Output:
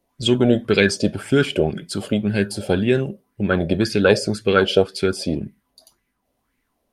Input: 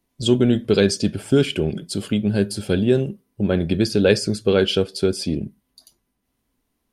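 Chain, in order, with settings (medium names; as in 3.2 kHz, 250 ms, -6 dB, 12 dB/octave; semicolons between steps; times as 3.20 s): sweeping bell 1.9 Hz 550–2200 Hz +15 dB; trim -1 dB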